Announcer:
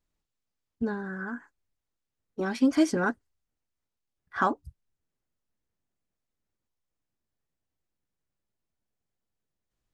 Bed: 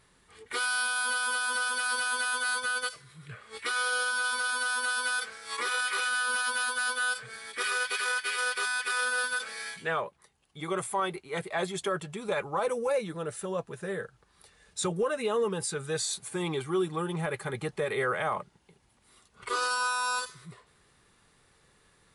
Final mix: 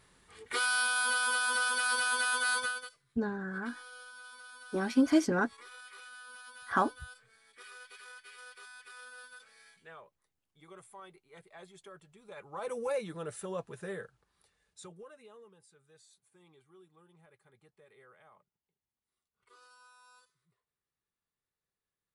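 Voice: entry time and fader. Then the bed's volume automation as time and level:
2.35 s, −2.5 dB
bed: 0:02.63 −0.5 dB
0:02.98 −21 dB
0:12.24 −21 dB
0:12.79 −5 dB
0:13.88 −5 dB
0:15.65 −31 dB

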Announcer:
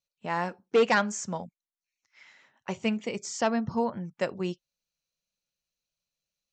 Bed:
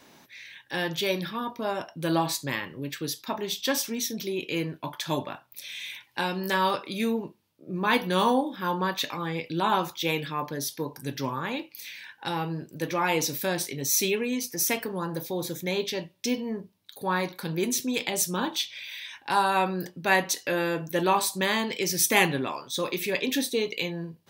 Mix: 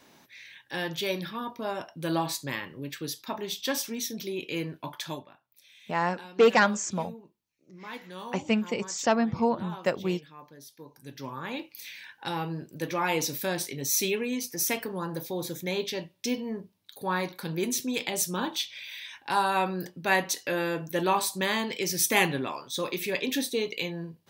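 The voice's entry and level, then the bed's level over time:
5.65 s, +2.5 dB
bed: 0:05.05 −3 dB
0:05.28 −17.5 dB
0:10.70 −17.5 dB
0:11.62 −2 dB

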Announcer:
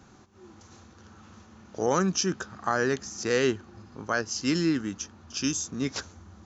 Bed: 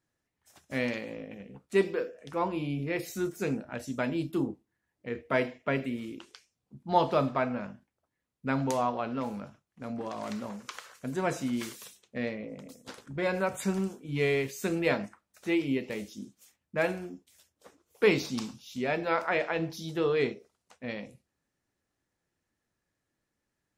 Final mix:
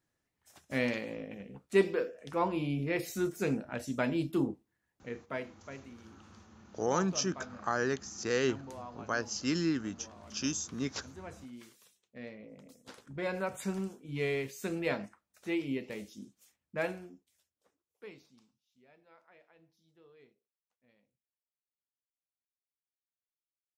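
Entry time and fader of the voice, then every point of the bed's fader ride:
5.00 s, −5.5 dB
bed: 0:04.88 −0.5 dB
0:05.66 −17 dB
0:11.73 −17 dB
0:12.97 −5.5 dB
0:16.85 −5.5 dB
0:18.54 −33.5 dB

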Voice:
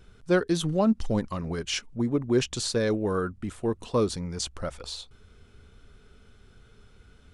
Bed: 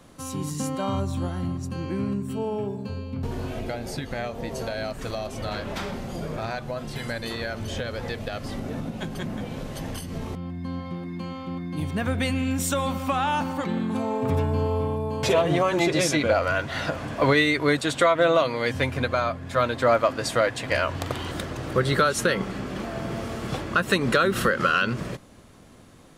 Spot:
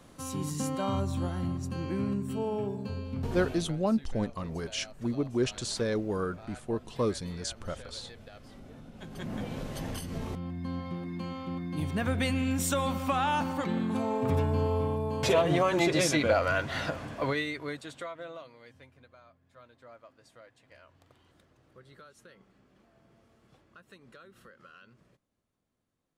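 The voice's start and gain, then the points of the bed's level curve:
3.05 s, −4.5 dB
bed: 0:03.45 −3.5 dB
0:03.78 −18 dB
0:08.88 −18 dB
0:09.35 −3.5 dB
0:16.75 −3.5 dB
0:18.99 −32.5 dB

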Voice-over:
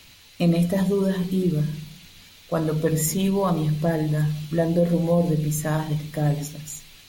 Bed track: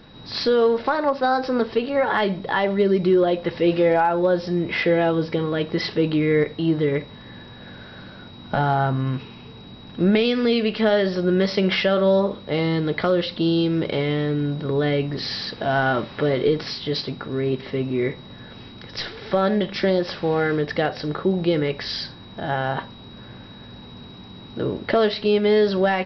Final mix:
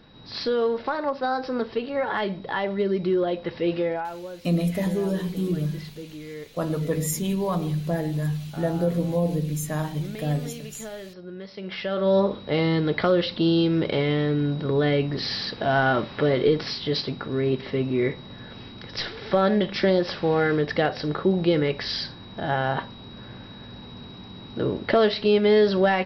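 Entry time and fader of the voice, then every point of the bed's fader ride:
4.05 s, −3.5 dB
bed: 0:03.77 −5.5 dB
0:04.31 −19 dB
0:11.50 −19 dB
0:12.19 −0.5 dB

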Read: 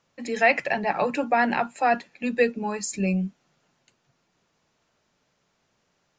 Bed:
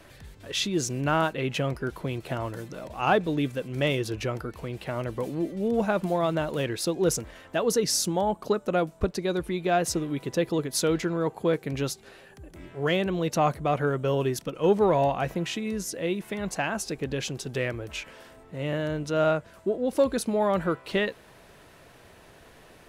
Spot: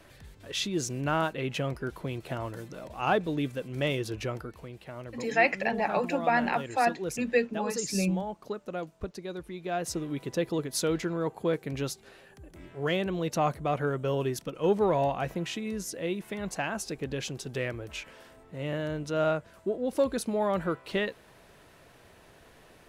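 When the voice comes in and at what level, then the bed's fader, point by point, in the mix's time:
4.95 s, −4.0 dB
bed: 0:04.33 −3.5 dB
0:04.79 −10.5 dB
0:09.54 −10.5 dB
0:10.10 −3.5 dB

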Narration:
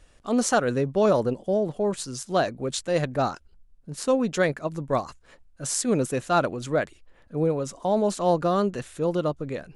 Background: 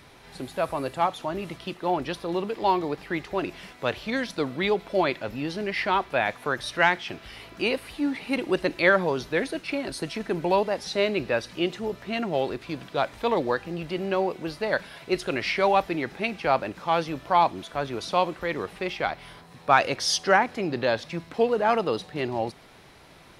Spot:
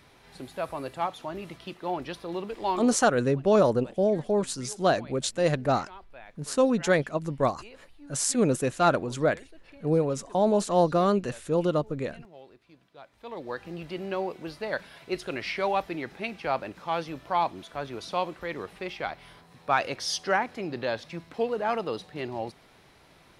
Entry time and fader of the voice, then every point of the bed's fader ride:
2.50 s, 0.0 dB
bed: 0:02.75 −5.5 dB
0:03.10 −23.5 dB
0:13.03 −23.5 dB
0:13.66 −5.5 dB

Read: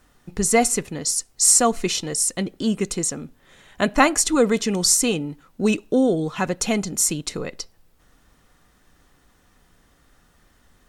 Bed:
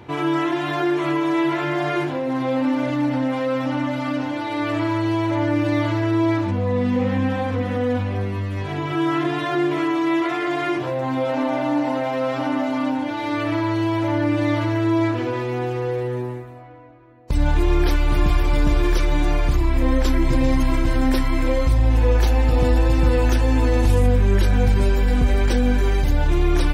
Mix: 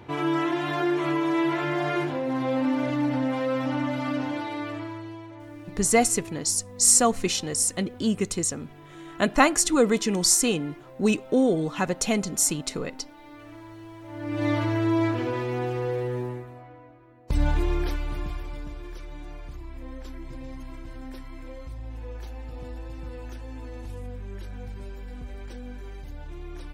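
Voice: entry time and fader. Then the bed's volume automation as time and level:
5.40 s, −2.5 dB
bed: 0:04.36 −4 dB
0:05.35 −22.5 dB
0:14.03 −22.5 dB
0:14.46 −4 dB
0:17.43 −4 dB
0:18.78 −21 dB

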